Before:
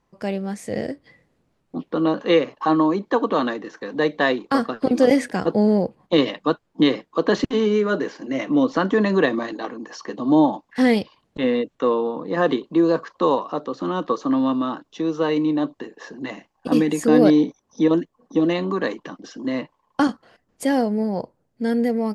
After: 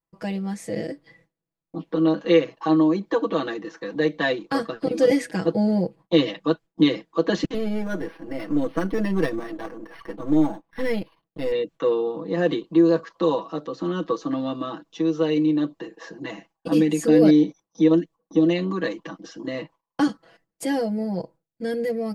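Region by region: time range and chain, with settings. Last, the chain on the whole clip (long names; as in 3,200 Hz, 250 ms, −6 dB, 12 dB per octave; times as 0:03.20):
0:07.54–0:11.52: gain on one half-wave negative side −7 dB + high-shelf EQ 5,800 Hz −7.5 dB + linearly interpolated sample-rate reduction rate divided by 6×
whole clip: noise gate with hold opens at −45 dBFS; dynamic equaliser 1,000 Hz, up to −6 dB, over −34 dBFS, Q 0.94; comb filter 6.1 ms, depth 99%; level −4 dB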